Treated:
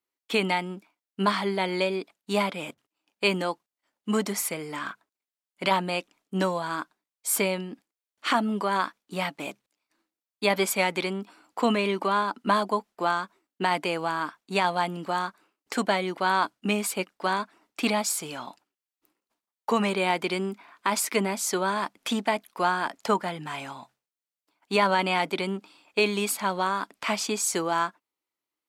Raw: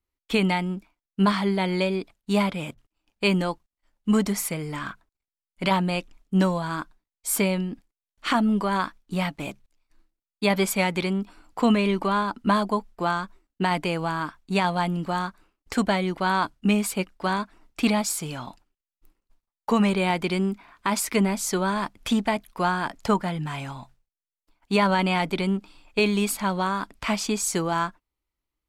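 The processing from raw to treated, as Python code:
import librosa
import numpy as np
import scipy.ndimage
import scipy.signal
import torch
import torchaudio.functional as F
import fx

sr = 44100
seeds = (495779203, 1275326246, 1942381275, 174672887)

y = scipy.signal.sosfilt(scipy.signal.butter(2, 290.0, 'highpass', fs=sr, output='sos'), x)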